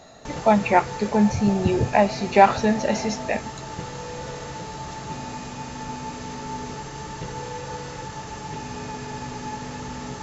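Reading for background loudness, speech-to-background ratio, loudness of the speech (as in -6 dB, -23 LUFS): -34.0 LUFS, 13.0 dB, -21.0 LUFS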